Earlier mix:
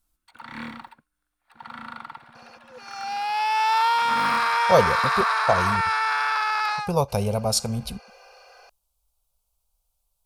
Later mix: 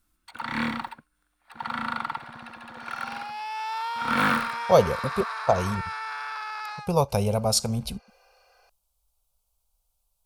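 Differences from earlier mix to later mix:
first sound +8.0 dB; second sound -10.5 dB

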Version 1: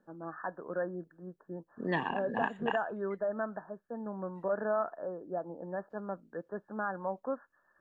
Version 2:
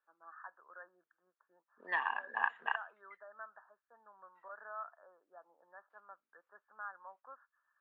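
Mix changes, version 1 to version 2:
second voice +11.5 dB; master: add ladder band-pass 1500 Hz, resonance 40%

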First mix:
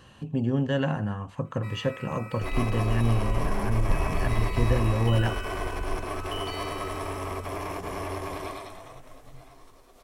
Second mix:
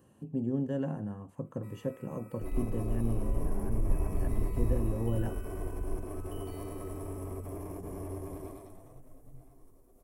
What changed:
speech: add HPF 350 Hz 6 dB/oct; second sound -3.0 dB; master: add EQ curve 320 Hz 0 dB, 1200 Hz -16 dB, 4000 Hz -24 dB, 11000 Hz -1 dB

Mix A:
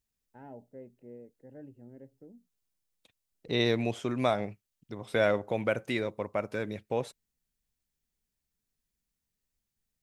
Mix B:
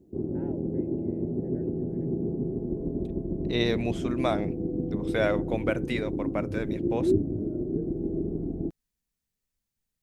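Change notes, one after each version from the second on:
background: unmuted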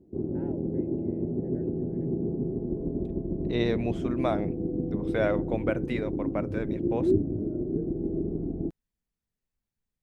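second voice: add high shelf 2800 Hz -11 dB

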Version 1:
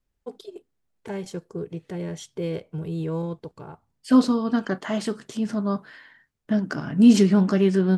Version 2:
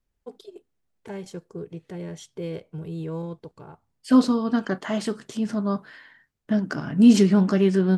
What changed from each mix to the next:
first voice -3.5 dB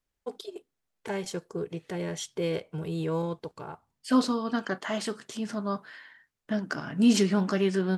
first voice +8.0 dB; master: add low shelf 430 Hz -9.5 dB

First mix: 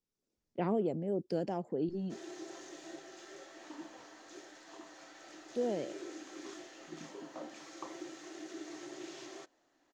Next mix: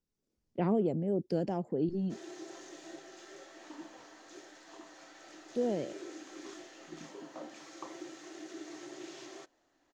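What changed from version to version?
speech: add low shelf 250 Hz +7.5 dB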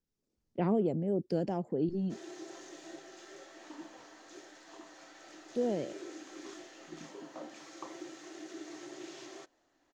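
none

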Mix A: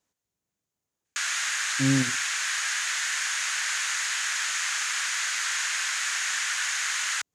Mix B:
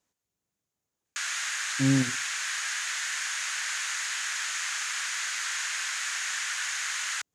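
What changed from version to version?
background -3.5 dB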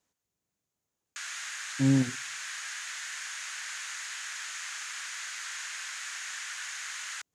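background -7.0 dB

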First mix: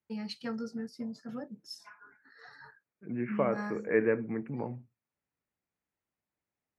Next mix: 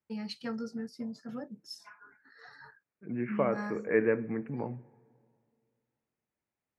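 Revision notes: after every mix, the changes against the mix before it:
reverb: on, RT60 2.3 s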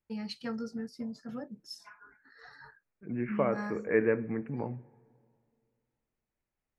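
master: remove HPF 100 Hz

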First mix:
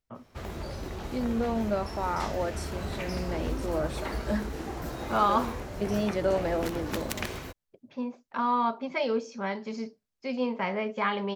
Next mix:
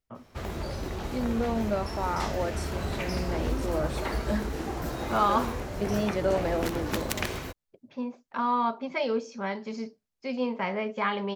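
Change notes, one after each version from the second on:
background +3.0 dB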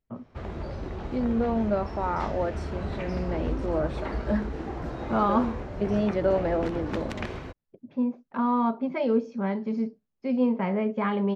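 first voice: add bell 200 Hz +9 dB 2.3 oct; second voice +4.0 dB; master: add tape spacing loss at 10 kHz 24 dB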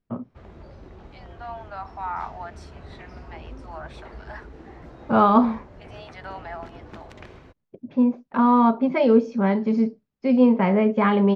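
first voice +7.5 dB; second voice: add steep high-pass 700 Hz 72 dB/oct; background -9.5 dB

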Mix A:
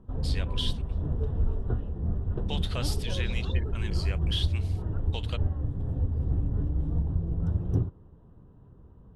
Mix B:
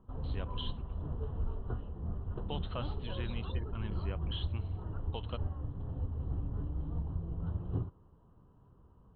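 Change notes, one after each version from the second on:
first voice: add tilt -4 dB/oct; master: add rippled Chebyshev low-pass 4200 Hz, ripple 9 dB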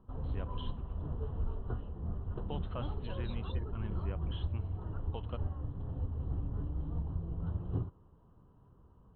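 first voice: add air absorption 420 m

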